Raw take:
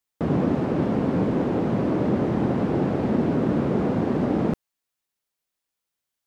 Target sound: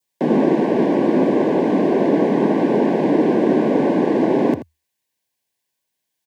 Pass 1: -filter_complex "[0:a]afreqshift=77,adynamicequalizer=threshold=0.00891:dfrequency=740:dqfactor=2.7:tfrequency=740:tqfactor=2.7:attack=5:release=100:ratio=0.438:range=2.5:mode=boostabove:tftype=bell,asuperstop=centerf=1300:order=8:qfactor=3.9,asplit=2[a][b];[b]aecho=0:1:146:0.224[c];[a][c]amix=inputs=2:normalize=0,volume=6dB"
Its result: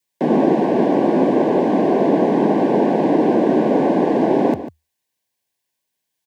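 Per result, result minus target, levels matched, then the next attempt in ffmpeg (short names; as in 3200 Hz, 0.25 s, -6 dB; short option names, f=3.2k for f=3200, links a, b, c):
echo 64 ms late; 1000 Hz band +3.0 dB
-filter_complex "[0:a]afreqshift=77,adynamicequalizer=threshold=0.00891:dfrequency=740:dqfactor=2.7:tfrequency=740:tqfactor=2.7:attack=5:release=100:ratio=0.438:range=2.5:mode=boostabove:tftype=bell,asuperstop=centerf=1300:order=8:qfactor=3.9,asplit=2[a][b];[b]aecho=0:1:82:0.224[c];[a][c]amix=inputs=2:normalize=0,volume=6dB"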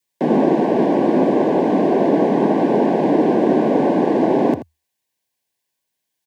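1000 Hz band +3.0 dB
-filter_complex "[0:a]afreqshift=77,adynamicequalizer=threshold=0.00891:dfrequency=2100:dqfactor=2.7:tfrequency=2100:tqfactor=2.7:attack=5:release=100:ratio=0.438:range=2.5:mode=boostabove:tftype=bell,asuperstop=centerf=1300:order=8:qfactor=3.9,asplit=2[a][b];[b]aecho=0:1:82:0.224[c];[a][c]amix=inputs=2:normalize=0,volume=6dB"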